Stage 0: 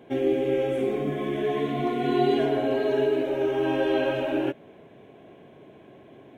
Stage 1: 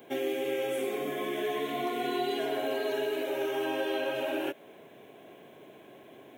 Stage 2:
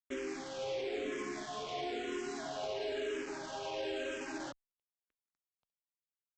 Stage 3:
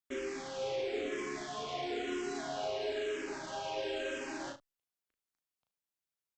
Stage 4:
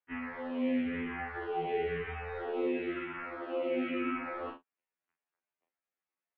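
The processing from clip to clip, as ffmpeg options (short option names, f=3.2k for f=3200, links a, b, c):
-filter_complex "[0:a]aemphasis=mode=production:type=bsi,acrossover=split=270|910[a][b][c];[a]acompressor=threshold=-49dB:ratio=4[d];[b]acompressor=threshold=-31dB:ratio=4[e];[c]acompressor=threshold=-37dB:ratio=4[f];[d][e][f]amix=inputs=3:normalize=0"
-filter_complex "[0:a]alimiter=level_in=1.5dB:limit=-24dB:level=0:latency=1:release=35,volume=-1.5dB,aresample=16000,acrusher=bits=5:mix=0:aa=0.5,aresample=44100,asplit=2[a][b];[b]afreqshift=-1[c];[a][c]amix=inputs=2:normalize=1,volume=-3dB"
-af "aecho=1:1:36|76:0.596|0.15"
-af "highpass=f=550:t=q:w=0.5412,highpass=f=550:t=q:w=1.307,lowpass=f=2.8k:t=q:w=0.5176,lowpass=f=2.8k:t=q:w=0.7071,lowpass=f=2.8k:t=q:w=1.932,afreqshift=-280,afftfilt=real='re*2*eq(mod(b,4),0)':imag='im*2*eq(mod(b,4),0)':win_size=2048:overlap=0.75,volume=7dB"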